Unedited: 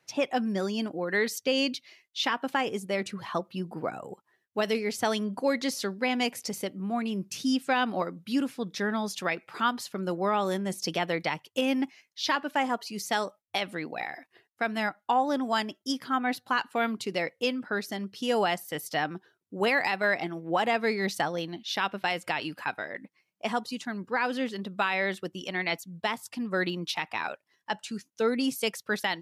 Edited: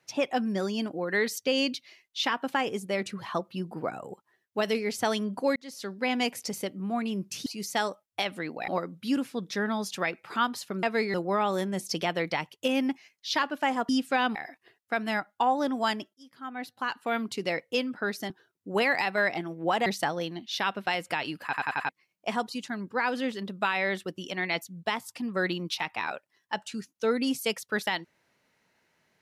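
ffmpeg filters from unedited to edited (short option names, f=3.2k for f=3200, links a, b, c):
-filter_complex "[0:a]asplit=16[a][b][c][d][e][f][g][h][i][j][k][l][m][n][o][p];[a]atrim=end=5.56,asetpts=PTS-STARTPTS,afade=t=out:st=5.556:d=0.004:c=hsin[q];[b]atrim=start=5.56:end=7.462,asetpts=PTS-STARTPTS,afade=t=in:d=0.54[r];[c]atrim=start=12.818:end=14.042[s];[d]atrim=start=7.918:end=10.072[t];[e]atrim=start=20.718:end=21.032[u];[f]atrim=start=10.068:end=12.822[v];[g]atrim=start=7.458:end=7.922[w];[h]atrim=start=14.038:end=15.83,asetpts=PTS-STARTPTS,afade=t=out:st=1.788:d=0.004:c=hsin[x];[i]atrim=start=15.83:end=17.992,asetpts=PTS-STARTPTS,afade=t=in:d=1.18[y];[j]atrim=start=19.158:end=20.722[z];[k]atrim=start=21.028:end=22.702[aa];[l]atrim=start=22.608:end=22.702[ab];[m]atrim=start=22.608:end=22.702[ac];[n]atrim=start=22.608:end=22.702[ad];[o]atrim=start=22.608:end=22.702[ae];[p]atrim=start=23.058[af];[q][r]concat=n=2:v=0:a=1[ag];[ag][s]acrossfade=d=0.004:c1=hsin:c2=hsin[ah];[ah][t]acrossfade=d=0.004:c1=hsin:c2=hsin[ai];[ai][u]acrossfade=d=0.004:c1=hsin:c2=hsin[aj];[aj][v]acrossfade=d=0.004:c1=hsin:c2=hsin[ak];[ak][w]acrossfade=d=0.004:c1=hsin:c2=hsin[al];[x][y]concat=n=2:v=0:a=1[am];[al][am]acrossfade=d=0.004:c1=hsin:c2=hsin[an];[an][z]acrossfade=d=0.004:c1=hsin:c2=hsin[ao];[ao][aa]acrossfade=d=0.004:c1=hsin:c2=hsin[ap];[ap][ab]acrossfade=d=0.004:c1=hsin:c2=hsin[aq];[aq][ac]acrossfade=d=0.004:c1=hsin:c2=hsin[ar];[ar][ad]acrossfade=d=0.004:c1=hsin:c2=hsin[as];[as][ae]acrossfade=d=0.004:c1=hsin:c2=hsin[at];[at][af]acrossfade=d=0.004:c1=hsin:c2=hsin"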